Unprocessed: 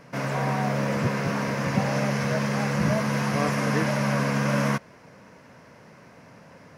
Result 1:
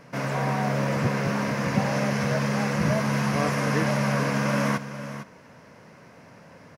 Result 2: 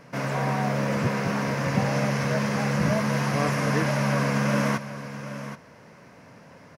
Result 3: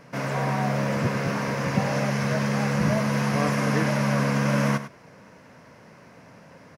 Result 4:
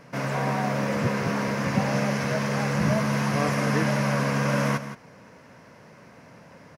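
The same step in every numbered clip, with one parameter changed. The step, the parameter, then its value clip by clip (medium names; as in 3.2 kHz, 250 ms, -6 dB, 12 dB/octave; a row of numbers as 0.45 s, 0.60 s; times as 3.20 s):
delay, time: 455 ms, 777 ms, 100 ms, 170 ms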